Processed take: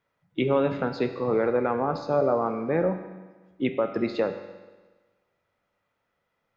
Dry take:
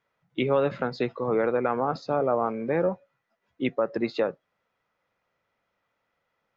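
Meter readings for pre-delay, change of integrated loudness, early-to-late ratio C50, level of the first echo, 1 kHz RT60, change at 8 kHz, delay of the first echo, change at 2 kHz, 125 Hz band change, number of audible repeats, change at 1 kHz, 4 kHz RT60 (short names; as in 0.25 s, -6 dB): 10 ms, +0.5 dB, 9.5 dB, none, 1.3 s, n/a, none, -0.5 dB, +2.0 dB, none, -0.5 dB, 1.3 s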